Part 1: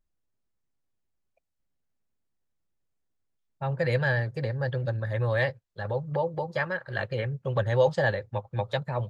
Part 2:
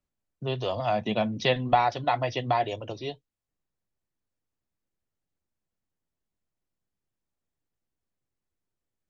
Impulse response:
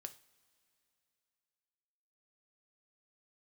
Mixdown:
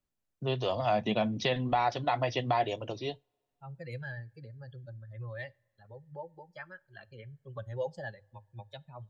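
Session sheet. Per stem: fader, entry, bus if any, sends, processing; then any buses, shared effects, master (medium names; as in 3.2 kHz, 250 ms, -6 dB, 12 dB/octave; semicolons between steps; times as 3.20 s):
-13.5 dB, 0.00 s, send -5 dB, expander on every frequency bin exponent 2
-2.0 dB, 0.00 s, send -17 dB, peak limiter -16.5 dBFS, peak gain reduction 7 dB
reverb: on, pre-delay 3 ms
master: hum notches 50/100 Hz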